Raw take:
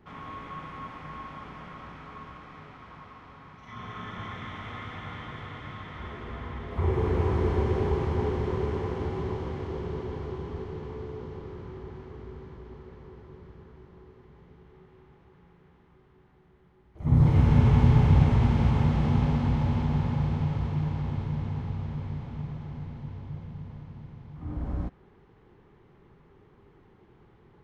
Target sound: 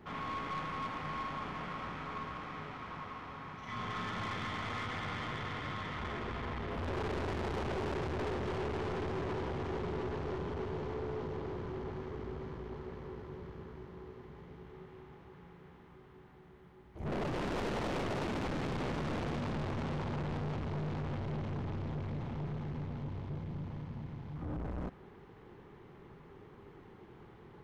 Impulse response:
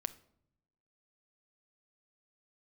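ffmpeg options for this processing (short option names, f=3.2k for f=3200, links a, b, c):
-af "aeval=exprs='0.0708*(abs(mod(val(0)/0.0708+3,4)-2)-1)':c=same,aeval=exprs='(tanh(89.1*val(0)+0.4)-tanh(0.4))/89.1':c=same,lowshelf=f=100:g=-6.5,volume=5.5dB"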